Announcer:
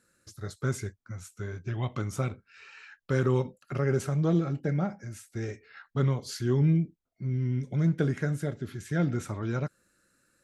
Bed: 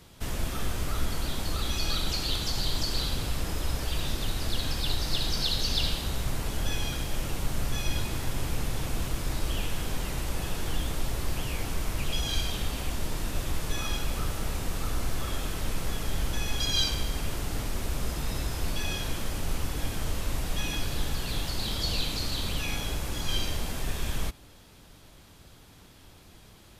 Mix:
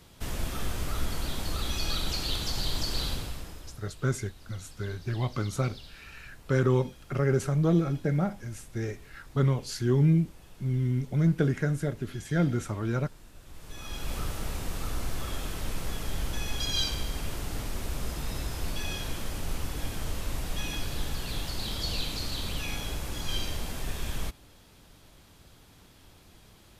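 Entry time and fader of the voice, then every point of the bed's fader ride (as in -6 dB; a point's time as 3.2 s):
3.40 s, +1.5 dB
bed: 3.11 s -1.5 dB
3.85 s -20.5 dB
13.41 s -20.5 dB
14.12 s -2.5 dB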